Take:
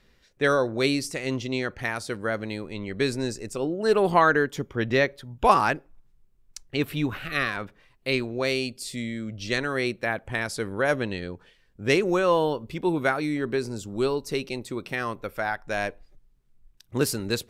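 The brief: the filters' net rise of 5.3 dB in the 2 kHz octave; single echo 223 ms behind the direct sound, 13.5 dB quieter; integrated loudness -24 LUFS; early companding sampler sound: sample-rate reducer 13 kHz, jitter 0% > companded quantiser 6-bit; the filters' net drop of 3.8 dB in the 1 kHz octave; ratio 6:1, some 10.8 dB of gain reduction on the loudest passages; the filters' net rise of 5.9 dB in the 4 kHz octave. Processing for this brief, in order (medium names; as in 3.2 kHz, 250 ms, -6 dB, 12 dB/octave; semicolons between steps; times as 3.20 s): peaking EQ 1 kHz -7.5 dB; peaking EQ 2 kHz +8 dB; peaking EQ 4 kHz +5 dB; compression 6:1, threshold -26 dBFS; delay 223 ms -13.5 dB; sample-rate reducer 13 kHz, jitter 0%; companded quantiser 6-bit; trim +7 dB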